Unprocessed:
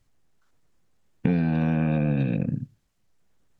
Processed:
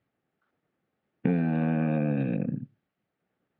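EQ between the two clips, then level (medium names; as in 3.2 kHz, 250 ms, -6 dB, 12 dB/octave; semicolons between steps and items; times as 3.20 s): band-pass 180–3000 Hz; distance through air 220 m; band-stop 1 kHz, Q 7.1; 0.0 dB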